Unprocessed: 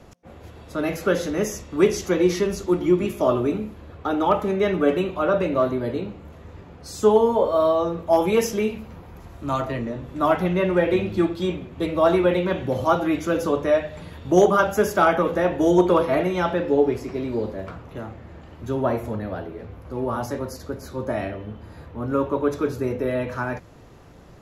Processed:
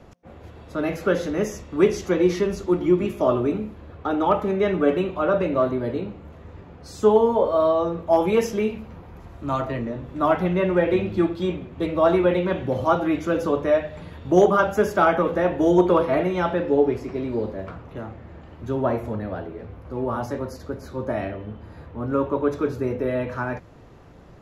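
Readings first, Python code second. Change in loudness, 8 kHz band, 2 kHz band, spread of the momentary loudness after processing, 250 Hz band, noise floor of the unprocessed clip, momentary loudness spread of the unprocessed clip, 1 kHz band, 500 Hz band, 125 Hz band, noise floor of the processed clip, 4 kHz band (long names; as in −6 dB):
0.0 dB, can't be measured, −1.0 dB, 17 LU, 0.0 dB, −45 dBFS, 17 LU, −0.5 dB, 0.0 dB, 0.0 dB, −45 dBFS, −3.0 dB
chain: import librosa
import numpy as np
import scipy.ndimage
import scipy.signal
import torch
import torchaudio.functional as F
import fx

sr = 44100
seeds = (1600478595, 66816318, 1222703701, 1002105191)

y = fx.high_shelf(x, sr, hz=4900.0, db=-9.5)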